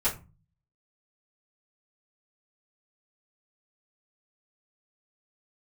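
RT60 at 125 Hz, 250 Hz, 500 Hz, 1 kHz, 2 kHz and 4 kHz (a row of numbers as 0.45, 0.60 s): 0.70, 0.55, 0.30, 0.30, 0.25, 0.20 s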